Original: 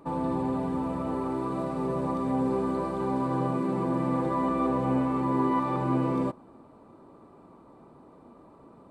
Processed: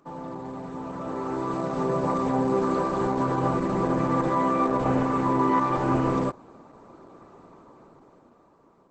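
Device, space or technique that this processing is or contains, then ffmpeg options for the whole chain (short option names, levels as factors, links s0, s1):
video call: -af "highpass=110,equalizer=f=250:t=o:w=0.67:g=-4,equalizer=f=1600:t=o:w=0.67:g=4,equalizer=f=6300:t=o:w=0.67:g=10,dynaudnorm=f=230:g=11:m=3.76,volume=0.531" -ar 48000 -c:a libopus -b:a 12k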